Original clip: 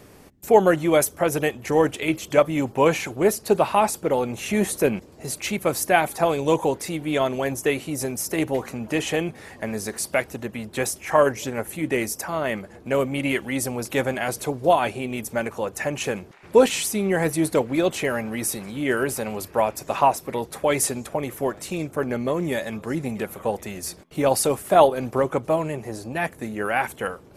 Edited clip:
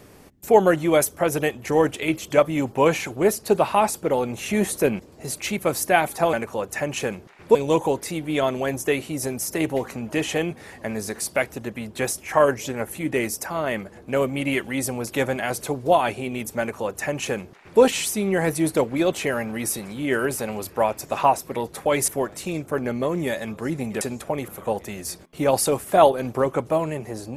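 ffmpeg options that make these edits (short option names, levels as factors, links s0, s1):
-filter_complex "[0:a]asplit=6[s0][s1][s2][s3][s4][s5];[s0]atrim=end=6.332[s6];[s1]atrim=start=15.368:end=16.592[s7];[s2]atrim=start=6.328:end=20.862[s8];[s3]atrim=start=21.328:end=23.262[s9];[s4]atrim=start=20.858:end=21.332[s10];[s5]atrim=start=23.258[s11];[s6][s7]acrossfade=d=0.004:c1=hsin:c2=hsin[s12];[s12][s8]acrossfade=d=0.004:c1=hsin:c2=hsin[s13];[s13][s9]acrossfade=d=0.004:c1=hsin:c2=hsin[s14];[s14][s10]acrossfade=d=0.004:c1=hsin:c2=hsin[s15];[s15][s11]acrossfade=d=0.004:c1=hsin:c2=hsin"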